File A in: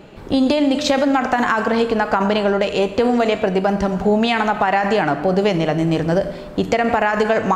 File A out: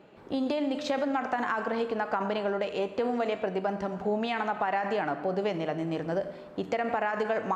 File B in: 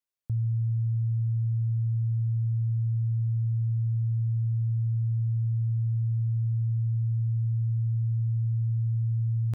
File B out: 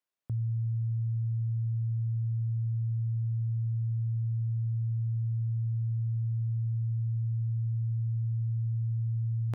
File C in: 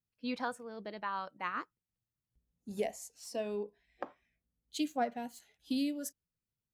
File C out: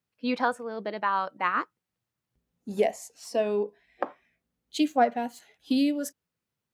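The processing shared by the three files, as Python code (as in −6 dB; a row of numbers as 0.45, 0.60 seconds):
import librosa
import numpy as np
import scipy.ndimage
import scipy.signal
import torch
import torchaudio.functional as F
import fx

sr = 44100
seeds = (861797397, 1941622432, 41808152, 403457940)

y = fx.highpass(x, sr, hz=290.0, slope=6)
y = fx.high_shelf(y, sr, hz=3400.0, db=-10.0)
y = y * 10.0 ** (-30 / 20.0) / np.sqrt(np.mean(np.square(y)))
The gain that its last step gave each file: −10.0, +5.0, +12.5 decibels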